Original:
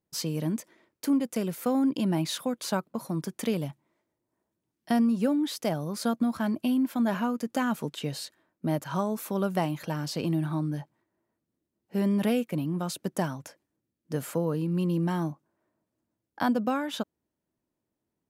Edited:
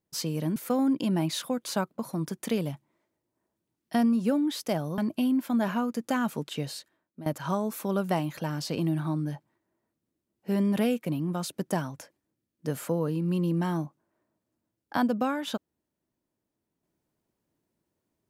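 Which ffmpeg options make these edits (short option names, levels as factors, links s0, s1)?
-filter_complex "[0:a]asplit=4[s0][s1][s2][s3];[s0]atrim=end=0.562[s4];[s1]atrim=start=1.518:end=5.942[s5];[s2]atrim=start=6.438:end=8.72,asetpts=PTS-STARTPTS,afade=t=out:st=1.632:d=0.65:silence=0.158489[s6];[s3]atrim=start=8.72,asetpts=PTS-STARTPTS,afade=t=in:d=0.004:c=hsin:silence=0.158489[s7];[s4][s5]acrossfade=d=0.004:c1=hsin:c2=hsin[s8];[s6][s7]concat=n=2:v=0:a=1[s9];[s8][s9]acrossfade=d=0.004:c1=hsin:c2=hsin"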